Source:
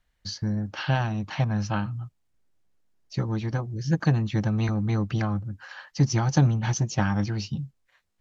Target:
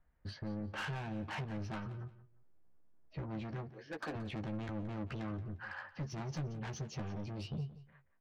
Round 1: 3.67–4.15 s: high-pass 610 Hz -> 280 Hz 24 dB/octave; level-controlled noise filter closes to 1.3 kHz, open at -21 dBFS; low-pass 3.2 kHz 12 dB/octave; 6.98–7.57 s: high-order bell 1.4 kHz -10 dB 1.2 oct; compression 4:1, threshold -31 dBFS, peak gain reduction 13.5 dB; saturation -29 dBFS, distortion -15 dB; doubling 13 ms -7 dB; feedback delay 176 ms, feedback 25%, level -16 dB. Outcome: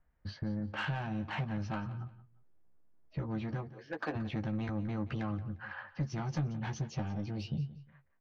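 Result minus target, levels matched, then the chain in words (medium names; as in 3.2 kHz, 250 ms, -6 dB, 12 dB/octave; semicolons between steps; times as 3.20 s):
saturation: distortion -7 dB
3.67–4.15 s: high-pass 610 Hz -> 280 Hz 24 dB/octave; level-controlled noise filter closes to 1.3 kHz, open at -21 dBFS; low-pass 3.2 kHz 12 dB/octave; 6.98–7.57 s: high-order bell 1.4 kHz -10 dB 1.2 oct; compression 4:1, threshold -31 dBFS, peak gain reduction 13.5 dB; saturation -37.5 dBFS, distortion -8 dB; doubling 13 ms -7 dB; feedback delay 176 ms, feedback 25%, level -16 dB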